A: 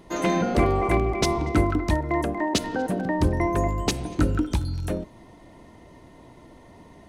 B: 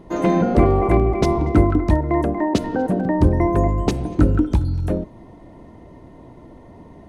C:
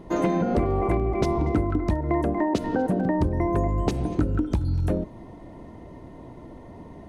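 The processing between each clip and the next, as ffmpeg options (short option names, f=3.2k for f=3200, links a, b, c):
-af "tiltshelf=f=1.5k:g=7"
-af "acompressor=threshold=-19dB:ratio=10"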